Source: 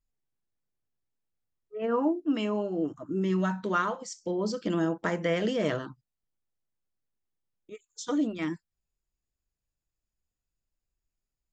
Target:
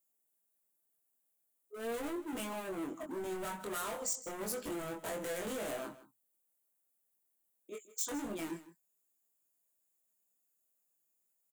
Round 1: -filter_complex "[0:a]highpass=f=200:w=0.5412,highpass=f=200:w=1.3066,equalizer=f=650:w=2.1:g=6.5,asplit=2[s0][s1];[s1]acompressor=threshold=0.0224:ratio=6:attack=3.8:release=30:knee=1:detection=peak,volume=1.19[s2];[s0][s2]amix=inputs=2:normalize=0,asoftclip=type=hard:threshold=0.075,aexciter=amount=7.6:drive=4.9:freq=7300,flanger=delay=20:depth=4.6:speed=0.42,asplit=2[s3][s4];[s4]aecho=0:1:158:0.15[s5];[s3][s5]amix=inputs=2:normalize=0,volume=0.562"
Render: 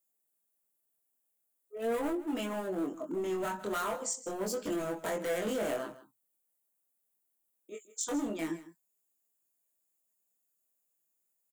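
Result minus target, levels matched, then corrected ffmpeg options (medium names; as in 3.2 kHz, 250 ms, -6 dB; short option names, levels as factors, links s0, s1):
hard clipper: distortion -5 dB
-filter_complex "[0:a]highpass=f=200:w=0.5412,highpass=f=200:w=1.3066,equalizer=f=650:w=2.1:g=6.5,asplit=2[s0][s1];[s1]acompressor=threshold=0.0224:ratio=6:attack=3.8:release=30:knee=1:detection=peak,volume=1.19[s2];[s0][s2]amix=inputs=2:normalize=0,asoftclip=type=hard:threshold=0.0299,aexciter=amount=7.6:drive=4.9:freq=7300,flanger=delay=20:depth=4.6:speed=0.42,asplit=2[s3][s4];[s4]aecho=0:1:158:0.15[s5];[s3][s5]amix=inputs=2:normalize=0,volume=0.562"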